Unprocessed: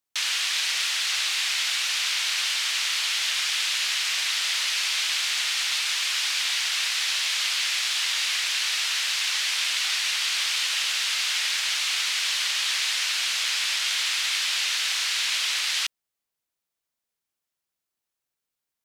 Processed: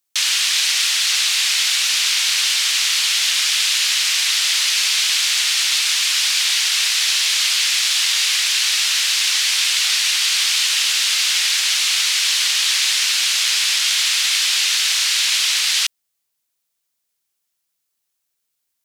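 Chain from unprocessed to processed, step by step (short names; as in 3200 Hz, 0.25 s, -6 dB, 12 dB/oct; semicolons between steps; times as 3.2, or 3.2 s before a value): high shelf 2800 Hz +9.5 dB; gain +2 dB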